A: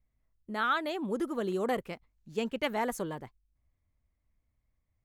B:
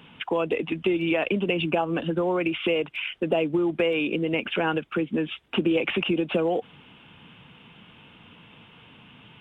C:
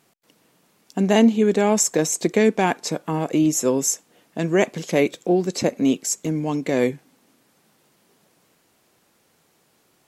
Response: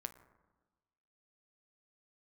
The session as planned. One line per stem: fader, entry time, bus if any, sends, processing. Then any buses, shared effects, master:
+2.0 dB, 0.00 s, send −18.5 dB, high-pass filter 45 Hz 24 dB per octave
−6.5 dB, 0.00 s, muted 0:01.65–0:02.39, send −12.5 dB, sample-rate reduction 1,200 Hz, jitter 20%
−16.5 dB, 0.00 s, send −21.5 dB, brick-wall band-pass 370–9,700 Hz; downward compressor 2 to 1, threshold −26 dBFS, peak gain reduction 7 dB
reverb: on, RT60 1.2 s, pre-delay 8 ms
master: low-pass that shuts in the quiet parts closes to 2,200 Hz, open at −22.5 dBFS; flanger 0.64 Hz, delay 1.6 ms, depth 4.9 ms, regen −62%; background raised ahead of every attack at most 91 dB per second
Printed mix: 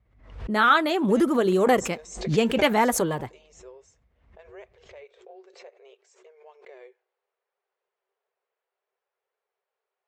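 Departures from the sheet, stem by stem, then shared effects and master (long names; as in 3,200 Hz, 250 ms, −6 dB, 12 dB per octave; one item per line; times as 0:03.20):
stem A +2.0 dB → +14.0 dB
stem B: muted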